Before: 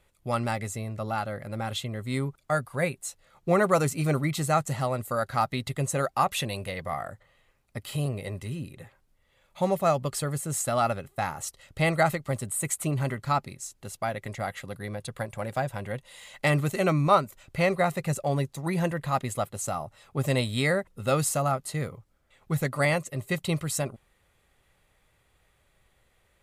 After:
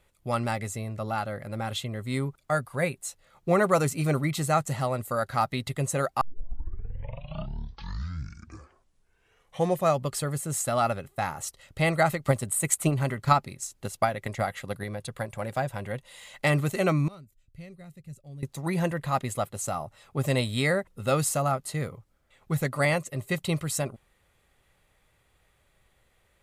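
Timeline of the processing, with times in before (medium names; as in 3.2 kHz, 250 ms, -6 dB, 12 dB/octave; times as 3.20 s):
6.21 s: tape start 3.75 s
12.22–14.84 s: transient shaper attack +8 dB, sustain +1 dB
17.08–18.43 s: amplifier tone stack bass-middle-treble 10-0-1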